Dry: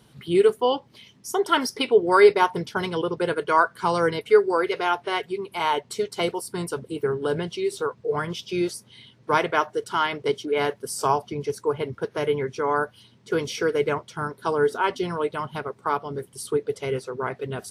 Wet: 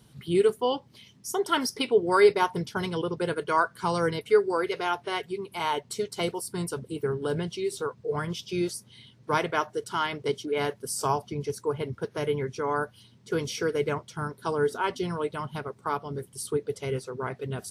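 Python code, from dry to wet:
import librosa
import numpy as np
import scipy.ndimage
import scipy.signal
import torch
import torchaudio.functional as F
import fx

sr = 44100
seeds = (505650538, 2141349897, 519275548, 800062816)

y = fx.bass_treble(x, sr, bass_db=6, treble_db=5)
y = F.gain(torch.from_numpy(y), -5.0).numpy()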